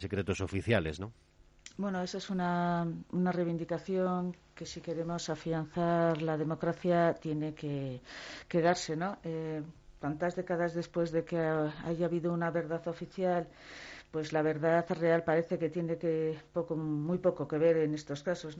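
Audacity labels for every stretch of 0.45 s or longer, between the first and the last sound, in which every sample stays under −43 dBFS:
1.090000	1.660000	silence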